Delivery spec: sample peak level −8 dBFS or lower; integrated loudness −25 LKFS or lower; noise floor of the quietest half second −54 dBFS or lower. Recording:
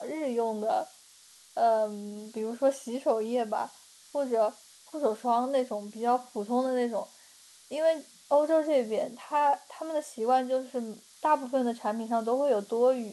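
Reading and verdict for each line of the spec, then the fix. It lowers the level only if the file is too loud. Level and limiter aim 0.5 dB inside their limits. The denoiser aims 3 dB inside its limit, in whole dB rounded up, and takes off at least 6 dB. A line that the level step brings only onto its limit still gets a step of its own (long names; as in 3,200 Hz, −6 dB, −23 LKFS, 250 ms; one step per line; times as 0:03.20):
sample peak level −13.0 dBFS: in spec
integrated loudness −29.5 LKFS: in spec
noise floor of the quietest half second −56 dBFS: in spec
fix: no processing needed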